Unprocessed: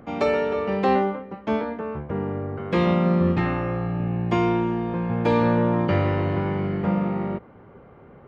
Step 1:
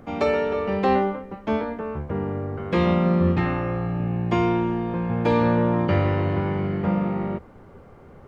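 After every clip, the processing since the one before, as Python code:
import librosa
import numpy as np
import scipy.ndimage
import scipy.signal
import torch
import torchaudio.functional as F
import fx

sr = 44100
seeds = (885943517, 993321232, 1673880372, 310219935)

y = fx.peak_eq(x, sr, hz=80.0, db=10.5, octaves=0.21)
y = fx.dmg_noise_colour(y, sr, seeds[0], colour='brown', level_db=-54.0)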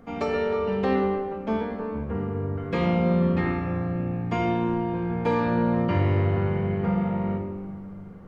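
y = fx.room_shoebox(x, sr, seeds[1], volume_m3=2800.0, walls='mixed', distance_m=1.7)
y = y * librosa.db_to_amplitude(-5.5)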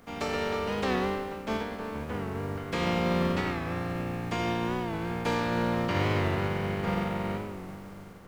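y = fx.spec_flatten(x, sr, power=0.6)
y = fx.record_warp(y, sr, rpm=45.0, depth_cents=100.0)
y = y * librosa.db_to_amplitude(-5.0)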